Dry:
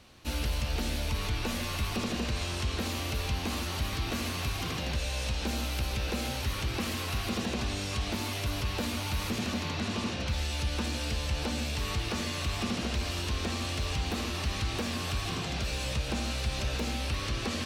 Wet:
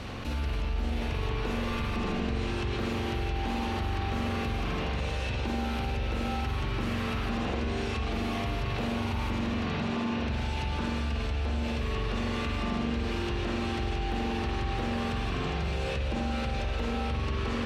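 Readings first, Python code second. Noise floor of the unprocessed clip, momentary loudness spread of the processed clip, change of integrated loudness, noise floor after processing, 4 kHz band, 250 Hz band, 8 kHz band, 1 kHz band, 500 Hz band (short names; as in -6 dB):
-35 dBFS, 1 LU, +1.0 dB, -32 dBFS, -4.5 dB, +3.5 dB, -11.5 dB, +3.5 dB, +3.5 dB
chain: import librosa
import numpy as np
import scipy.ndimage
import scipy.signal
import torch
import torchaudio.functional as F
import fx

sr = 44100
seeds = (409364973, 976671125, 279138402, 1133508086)

y = fx.lowpass(x, sr, hz=2100.0, slope=6)
y = fx.rev_spring(y, sr, rt60_s=1.6, pass_ms=(43,), chirp_ms=70, drr_db=-3.0)
y = fx.env_flatten(y, sr, amount_pct=70)
y = y * librosa.db_to_amplitude(-7.0)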